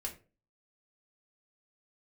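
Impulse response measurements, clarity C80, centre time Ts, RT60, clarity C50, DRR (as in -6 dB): 18.0 dB, 13 ms, 0.35 s, 12.5 dB, -1.0 dB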